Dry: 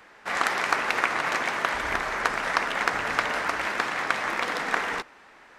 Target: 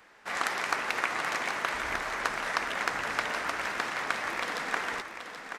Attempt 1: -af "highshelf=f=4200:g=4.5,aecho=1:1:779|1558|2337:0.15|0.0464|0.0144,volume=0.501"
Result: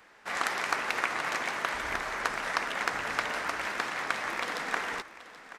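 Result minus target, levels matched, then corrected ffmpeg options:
echo-to-direct -7.5 dB
-af "highshelf=f=4200:g=4.5,aecho=1:1:779|1558|2337|3116:0.355|0.11|0.0341|0.0106,volume=0.501"

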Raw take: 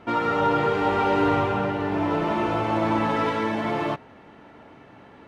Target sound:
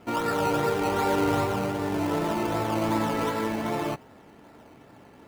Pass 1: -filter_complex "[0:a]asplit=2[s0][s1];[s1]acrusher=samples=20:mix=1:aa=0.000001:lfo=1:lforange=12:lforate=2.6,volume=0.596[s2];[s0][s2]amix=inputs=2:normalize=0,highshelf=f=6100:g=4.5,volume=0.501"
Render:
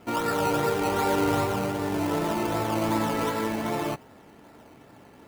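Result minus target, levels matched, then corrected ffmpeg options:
8 kHz band +2.5 dB
-filter_complex "[0:a]asplit=2[s0][s1];[s1]acrusher=samples=20:mix=1:aa=0.000001:lfo=1:lforange=12:lforate=2.6,volume=0.596[s2];[s0][s2]amix=inputs=2:normalize=0,volume=0.501"

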